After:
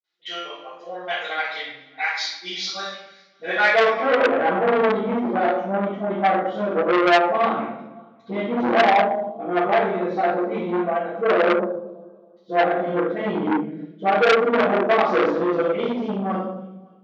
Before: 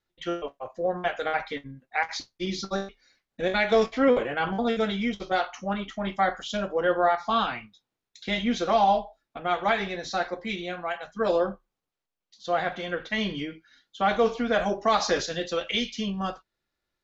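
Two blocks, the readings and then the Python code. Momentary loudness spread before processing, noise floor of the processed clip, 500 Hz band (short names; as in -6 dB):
11 LU, -51 dBFS, +6.5 dB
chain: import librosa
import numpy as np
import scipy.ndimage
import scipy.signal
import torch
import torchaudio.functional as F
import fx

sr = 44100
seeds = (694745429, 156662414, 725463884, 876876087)

p1 = scipy.signal.sosfilt(scipy.signal.butter(4, 140.0, 'highpass', fs=sr, output='sos'), x)
p2 = fx.rider(p1, sr, range_db=4, speed_s=2.0)
p3 = p1 + (p2 * librosa.db_to_amplitude(-2.0))
p4 = fx.dispersion(p3, sr, late='highs', ms=41.0, hz=540.0)
p5 = fx.filter_sweep_bandpass(p4, sr, from_hz=4400.0, to_hz=370.0, start_s=2.75, end_s=4.8, q=1.0)
p6 = fx.air_absorb(p5, sr, metres=86.0)
p7 = p6 + fx.echo_feedback(p6, sr, ms=279, feedback_pct=43, wet_db=-24.0, dry=0)
p8 = fx.room_shoebox(p7, sr, seeds[0], volume_m3=230.0, walls='mixed', distance_m=4.9)
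p9 = fx.transformer_sat(p8, sr, knee_hz=2100.0)
y = p9 * librosa.db_to_amplitude(-6.5)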